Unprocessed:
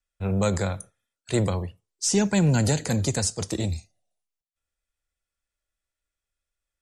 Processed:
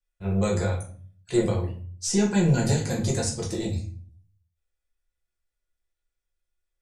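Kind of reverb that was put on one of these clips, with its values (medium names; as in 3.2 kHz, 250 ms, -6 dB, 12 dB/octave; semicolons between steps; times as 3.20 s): simulated room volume 40 m³, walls mixed, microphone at 0.93 m; trim -7.5 dB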